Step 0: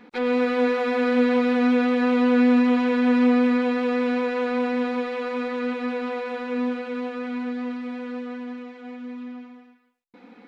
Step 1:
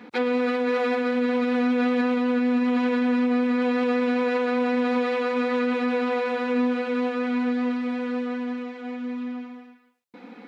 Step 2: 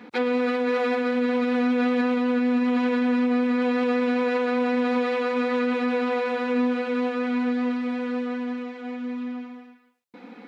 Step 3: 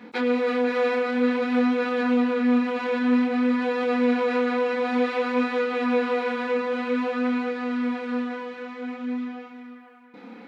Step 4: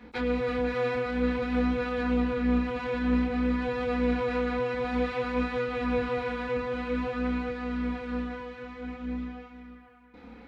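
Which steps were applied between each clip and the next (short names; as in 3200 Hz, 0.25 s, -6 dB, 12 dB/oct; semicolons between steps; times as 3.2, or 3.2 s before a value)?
HPF 83 Hz 24 dB/oct; limiter -21 dBFS, peak gain reduction 11 dB; gain +4.5 dB
nothing audible
narrowing echo 0.498 s, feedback 53%, band-pass 1200 Hz, level -8.5 dB; chorus 0.53 Hz, depth 7.9 ms; gain +3 dB
octaver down 2 oct, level -5 dB; gain -5.5 dB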